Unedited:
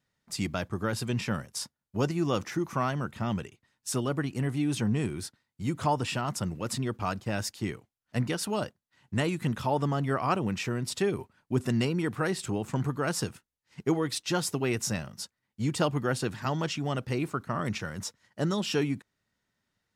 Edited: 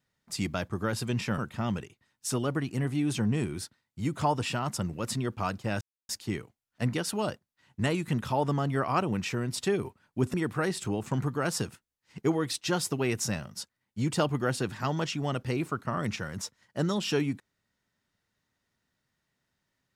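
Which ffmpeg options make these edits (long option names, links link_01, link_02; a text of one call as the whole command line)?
ffmpeg -i in.wav -filter_complex "[0:a]asplit=4[link_01][link_02][link_03][link_04];[link_01]atrim=end=1.382[link_05];[link_02]atrim=start=2.998:end=7.43,asetpts=PTS-STARTPTS,afade=type=out:start_time=4.428:duration=0.004:curve=hsin,apad=pad_dur=0.28[link_06];[link_03]atrim=start=7.43:end=11.682,asetpts=PTS-STARTPTS,afade=type=in:duration=0.004:curve=hsin[link_07];[link_04]atrim=start=11.958[link_08];[link_06][link_07]concat=n=2:v=0:a=1[link_09];[link_05][link_09]acrossfade=duration=0.004:curve1=hsin:curve2=hsin[link_10];[link_10][link_08]acrossfade=duration=0.004:curve1=hsin:curve2=hsin" out.wav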